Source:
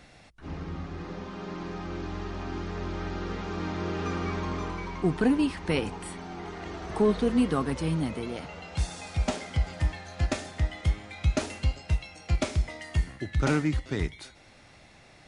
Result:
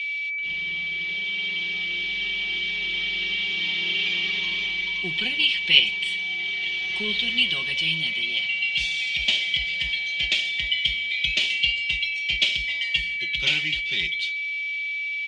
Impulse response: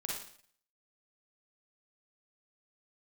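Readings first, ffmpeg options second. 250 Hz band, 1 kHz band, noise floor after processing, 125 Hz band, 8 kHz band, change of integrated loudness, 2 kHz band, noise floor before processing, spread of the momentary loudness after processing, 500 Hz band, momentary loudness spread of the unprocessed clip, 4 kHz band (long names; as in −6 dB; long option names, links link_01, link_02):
−13.5 dB, −13.0 dB, −29 dBFS, −14.5 dB, +0.5 dB, +8.0 dB, +17.5 dB, −54 dBFS, 5 LU, −13.0 dB, 13 LU, +22.0 dB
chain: -filter_complex "[0:a]aecho=1:1:5.4:0.85,aeval=exprs='val(0)+0.0158*sin(2*PI*2300*n/s)':channel_layout=same,aexciter=amount=14.8:drive=4.8:freq=2100,lowpass=frequency=3100:width_type=q:width=6.1,asplit=2[link_01][link_02];[1:a]atrim=start_sample=2205[link_03];[link_02][link_03]afir=irnorm=-1:irlink=0,volume=-16dB[link_04];[link_01][link_04]amix=inputs=2:normalize=0,volume=-16dB"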